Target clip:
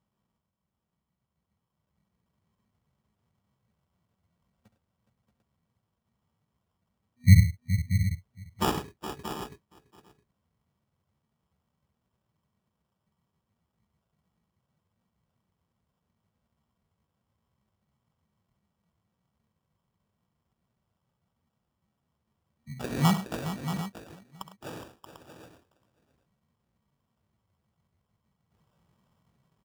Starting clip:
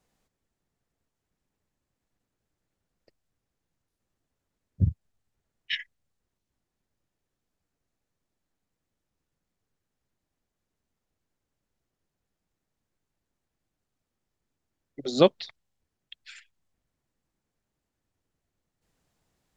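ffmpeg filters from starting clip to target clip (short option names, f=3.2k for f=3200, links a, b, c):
-filter_complex "[0:a]acrossover=split=180|2800[a][b][c];[b]acompressor=threshold=-31dB:ratio=12[d];[a][d][c]amix=inputs=3:normalize=0,aresample=11025,aresample=44100,highshelf=f=3k:g=-7,asplit=2[e][f];[f]adelay=443.1,volume=-19dB,highshelf=f=4k:g=-9.97[g];[e][g]amix=inputs=2:normalize=0,afftfilt=real='re*(1-between(b*sr/4096,240,920))':imag='im*(1-between(b*sr/4096,240,920))':win_size=4096:overlap=0.75,atempo=0.66,asplit=2[h][i];[i]aecho=0:1:67|104|417|630|746:0.266|0.188|0.266|0.299|0.211[j];[h][j]amix=inputs=2:normalize=0,dynaudnorm=f=270:g=13:m=10dB,acrusher=samples=21:mix=1:aa=0.000001,highpass=75"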